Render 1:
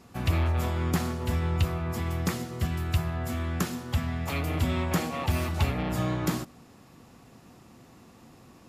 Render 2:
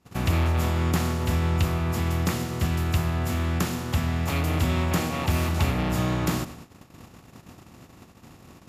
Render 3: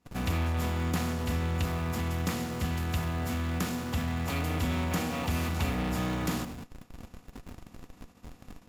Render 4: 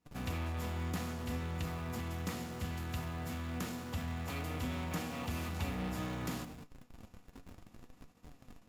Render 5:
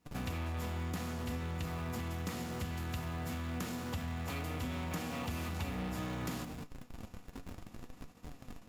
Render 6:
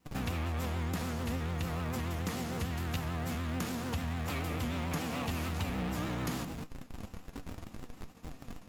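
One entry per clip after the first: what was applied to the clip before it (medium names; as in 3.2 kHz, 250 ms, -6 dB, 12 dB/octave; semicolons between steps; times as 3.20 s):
spectral levelling over time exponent 0.6; gate -37 dBFS, range -28 dB
comb 4.1 ms, depth 40%; in parallel at -10.5 dB: Schmitt trigger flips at -39.5 dBFS; on the sum: trim -7 dB
flange 0.61 Hz, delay 6.2 ms, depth 5.1 ms, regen +69%; trim -3.5 dB
compression 2.5:1, threshold -45 dBFS, peak gain reduction 9 dB; trim +6.5 dB
vibrato 6.8 Hz 99 cents; crackling interface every 0.39 s, samples 512, repeat, from 0.99 s; trim +3.5 dB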